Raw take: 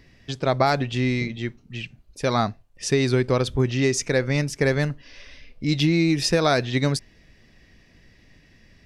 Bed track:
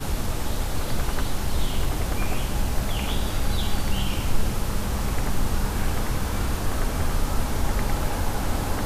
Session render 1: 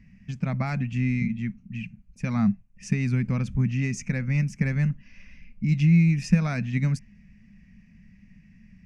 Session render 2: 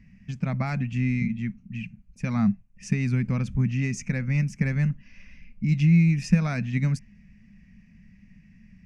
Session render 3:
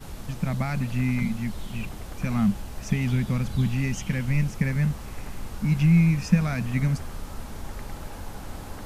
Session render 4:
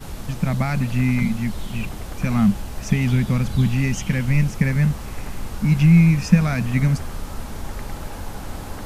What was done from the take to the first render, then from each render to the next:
drawn EQ curve 140 Hz 0 dB, 200 Hz +14 dB, 330 Hz −21 dB, 1,600 Hz −10 dB, 2,500 Hz −3 dB, 3,600 Hz −24 dB, 6,400 Hz −10 dB, 12,000 Hz −19 dB
no processing that can be heard
mix in bed track −12 dB
level +5.5 dB

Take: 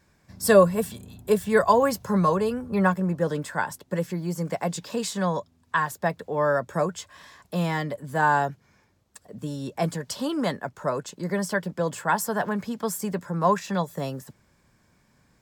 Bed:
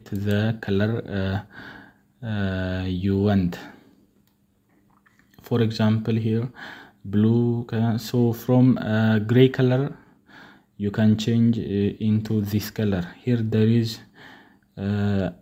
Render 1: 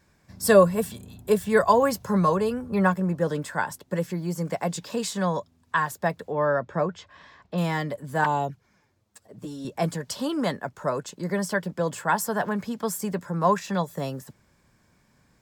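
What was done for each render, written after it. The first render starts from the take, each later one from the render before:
0:06.32–0:07.58: high-frequency loss of the air 170 metres
0:08.24–0:09.65: flanger swept by the level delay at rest 10.2 ms, full sweep at −19.5 dBFS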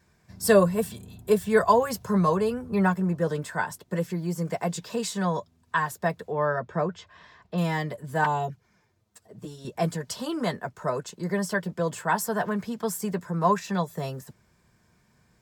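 notch comb filter 280 Hz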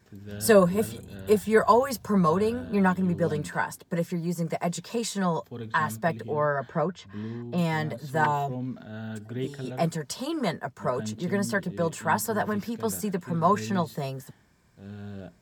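mix in bed −17 dB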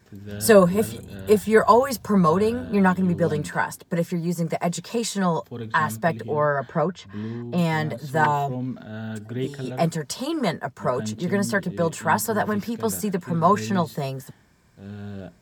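level +4 dB

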